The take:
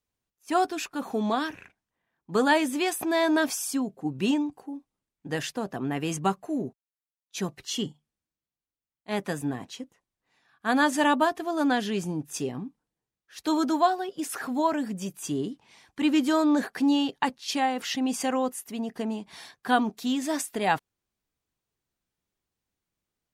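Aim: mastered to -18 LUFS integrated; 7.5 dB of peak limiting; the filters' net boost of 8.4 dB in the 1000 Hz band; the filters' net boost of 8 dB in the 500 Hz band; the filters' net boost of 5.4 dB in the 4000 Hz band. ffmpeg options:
-af "equalizer=f=500:t=o:g=8,equalizer=f=1k:t=o:g=7.5,equalizer=f=4k:t=o:g=6.5,volume=5.5dB,alimiter=limit=-4dB:level=0:latency=1"

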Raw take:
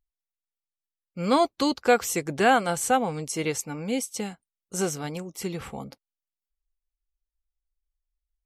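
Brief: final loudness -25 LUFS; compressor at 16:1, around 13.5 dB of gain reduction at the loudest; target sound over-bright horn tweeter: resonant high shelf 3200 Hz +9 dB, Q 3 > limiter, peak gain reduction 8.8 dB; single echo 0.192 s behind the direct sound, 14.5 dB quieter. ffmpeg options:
-af "acompressor=threshold=-28dB:ratio=16,highshelf=f=3.2k:t=q:w=3:g=9,aecho=1:1:192:0.188,volume=5dB,alimiter=limit=-12.5dB:level=0:latency=1"

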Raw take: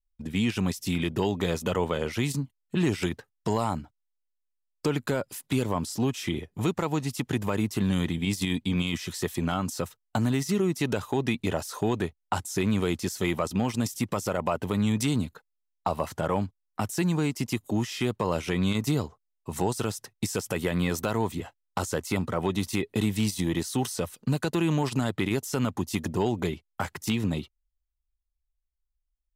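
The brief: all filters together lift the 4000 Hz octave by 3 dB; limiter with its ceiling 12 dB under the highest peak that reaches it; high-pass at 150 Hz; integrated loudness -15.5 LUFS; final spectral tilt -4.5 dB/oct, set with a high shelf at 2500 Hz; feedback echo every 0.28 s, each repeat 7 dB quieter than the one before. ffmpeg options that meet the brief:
-af "highpass=150,highshelf=f=2.5k:g=-6,equalizer=f=4k:t=o:g=9,alimiter=level_in=1.5dB:limit=-24dB:level=0:latency=1,volume=-1.5dB,aecho=1:1:280|560|840|1120|1400:0.447|0.201|0.0905|0.0407|0.0183,volume=19.5dB"

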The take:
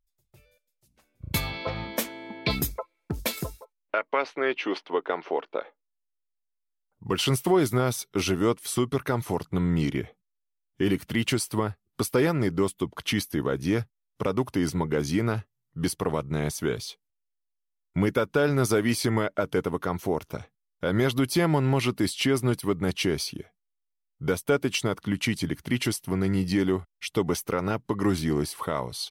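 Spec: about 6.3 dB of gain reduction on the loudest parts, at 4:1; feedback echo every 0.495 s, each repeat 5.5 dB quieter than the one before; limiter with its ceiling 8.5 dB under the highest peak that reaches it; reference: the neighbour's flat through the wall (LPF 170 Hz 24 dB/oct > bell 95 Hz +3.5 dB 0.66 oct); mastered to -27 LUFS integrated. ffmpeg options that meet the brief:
-af "acompressor=threshold=-26dB:ratio=4,alimiter=limit=-22dB:level=0:latency=1,lowpass=f=170:w=0.5412,lowpass=f=170:w=1.3066,equalizer=f=95:t=o:w=0.66:g=3.5,aecho=1:1:495|990|1485|1980|2475|2970|3465:0.531|0.281|0.149|0.079|0.0419|0.0222|0.0118,volume=12dB"

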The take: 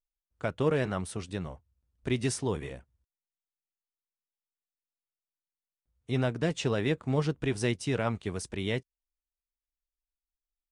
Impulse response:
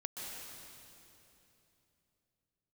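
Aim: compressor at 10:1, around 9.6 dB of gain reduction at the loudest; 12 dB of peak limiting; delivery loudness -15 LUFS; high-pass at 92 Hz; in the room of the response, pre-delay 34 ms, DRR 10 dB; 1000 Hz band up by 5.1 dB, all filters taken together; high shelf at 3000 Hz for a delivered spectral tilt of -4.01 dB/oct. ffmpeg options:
-filter_complex "[0:a]highpass=92,equalizer=f=1k:t=o:g=5.5,highshelf=f=3k:g=8,acompressor=threshold=-30dB:ratio=10,alimiter=level_in=3.5dB:limit=-24dB:level=0:latency=1,volume=-3.5dB,asplit=2[a][b];[1:a]atrim=start_sample=2205,adelay=34[c];[b][c]afir=irnorm=-1:irlink=0,volume=-10dB[d];[a][d]amix=inputs=2:normalize=0,volume=24.5dB"

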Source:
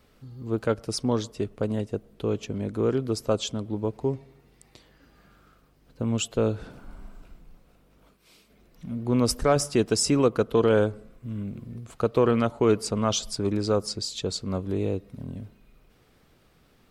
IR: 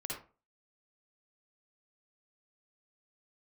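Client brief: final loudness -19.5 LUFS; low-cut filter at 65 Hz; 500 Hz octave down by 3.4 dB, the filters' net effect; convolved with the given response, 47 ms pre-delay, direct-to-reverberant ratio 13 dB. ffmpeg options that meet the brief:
-filter_complex "[0:a]highpass=65,equalizer=f=500:t=o:g=-4,asplit=2[a][b];[1:a]atrim=start_sample=2205,adelay=47[c];[b][c]afir=irnorm=-1:irlink=0,volume=-13.5dB[d];[a][d]amix=inputs=2:normalize=0,volume=8.5dB"

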